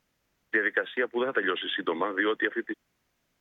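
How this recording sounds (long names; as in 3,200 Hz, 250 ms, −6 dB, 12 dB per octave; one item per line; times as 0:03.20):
background noise floor −76 dBFS
spectral slope 0.0 dB per octave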